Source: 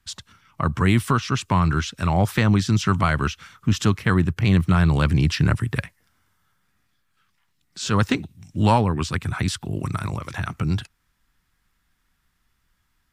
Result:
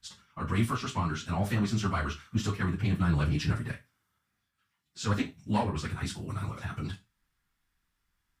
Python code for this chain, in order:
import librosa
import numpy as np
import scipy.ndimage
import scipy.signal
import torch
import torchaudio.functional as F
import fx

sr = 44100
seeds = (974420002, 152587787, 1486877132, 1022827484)

y = fx.diode_clip(x, sr, knee_db=-5.0)
y = fx.rev_schroeder(y, sr, rt60_s=0.35, comb_ms=27, drr_db=6.5)
y = fx.stretch_vocoder_free(y, sr, factor=0.64)
y = y * librosa.db_to_amplitude(-6.0)